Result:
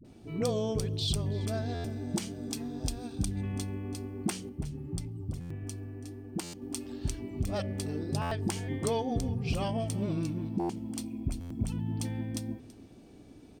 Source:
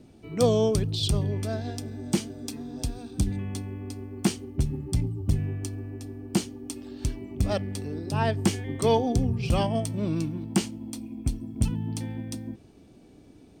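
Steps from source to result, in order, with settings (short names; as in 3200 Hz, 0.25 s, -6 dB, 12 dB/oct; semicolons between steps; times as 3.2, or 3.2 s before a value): de-hum 62.75 Hz, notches 10; compressor 4:1, threshold -28 dBFS, peak gain reduction 9.5 dB; dispersion highs, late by 47 ms, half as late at 450 Hz; 4.49–6.62 flange 1.7 Hz, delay 4 ms, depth 4.6 ms, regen +72%; echo 0.331 s -20 dB; stuck buffer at 1.74/5.4/6.43/8.21/10.59/11.4, samples 512, times 8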